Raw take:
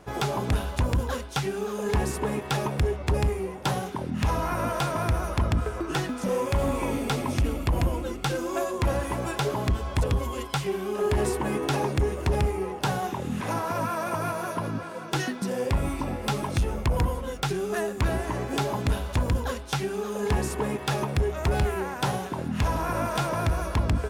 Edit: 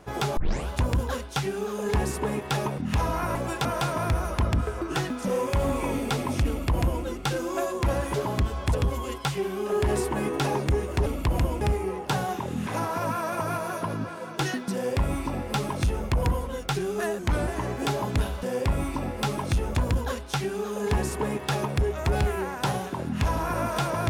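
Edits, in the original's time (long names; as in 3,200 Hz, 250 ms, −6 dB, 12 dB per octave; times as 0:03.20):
0:00.37: tape start 0.31 s
0:02.78–0:04.07: remove
0:07.48–0:08.03: duplicate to 0:12.35
0:09.13–0:09.43: move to 0:04.64
0:15.48–0:16.80: duplicate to 0:19.14
0:17.93–0:18.19: play speed 90%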